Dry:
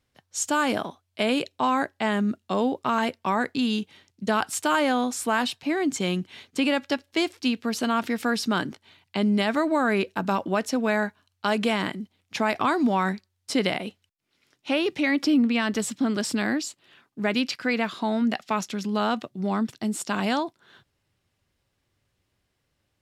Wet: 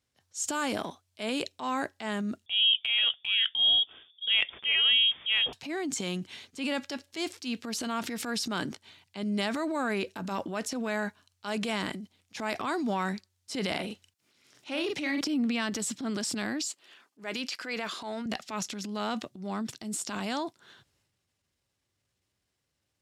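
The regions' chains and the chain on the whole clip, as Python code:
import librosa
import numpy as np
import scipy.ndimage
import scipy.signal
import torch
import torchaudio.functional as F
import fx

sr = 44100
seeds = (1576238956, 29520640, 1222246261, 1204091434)

y = fx.chain(x, sr, fx.tilt_shelf(db=7.5, hz=1200.0),
    fx.freq_invert(carrier_hz=3500), at=(2.46, 5.53))
y = fx.chain(y, sr, fx.doubler(ms=43.0, db=-8.0),
    fx.band_squash(depth_pct=40), at=(13.71, 15.21))
y = fx.chain(y, sr, fx.highpass(hz=320.0, slope=12),
    fx.notch(hz=3800.0, q=24.0), at=(16.68, 18.26))
y = fx.peak_eq(y, sr, hz=7100.0, db=7.0, octaves=1.7)
y = fx.transient(y, sr, attack_db=-8, sustain_db=7)
y = scipy.signal.sosfilt(scipy.signal.butter(2, 46.0, 'highpass', fs=sr, output='sos'), y)
y = y * 10.0 ** (-7.5 / 20.0)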